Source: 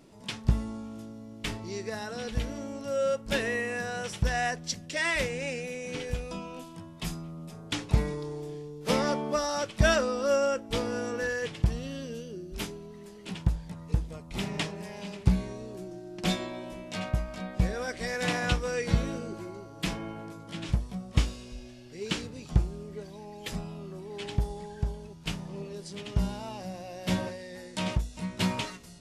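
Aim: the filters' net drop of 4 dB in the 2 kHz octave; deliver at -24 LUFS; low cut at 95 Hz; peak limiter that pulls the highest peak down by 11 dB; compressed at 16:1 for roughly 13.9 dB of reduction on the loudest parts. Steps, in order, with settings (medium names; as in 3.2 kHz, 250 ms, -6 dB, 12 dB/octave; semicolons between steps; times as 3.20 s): high-pass 95 Hz; peaking EQ 2 kHz -5 dB; compression 16:1, threshold -34 dBFS; trim +17.5 dB; peak limiter -13.5 dBFS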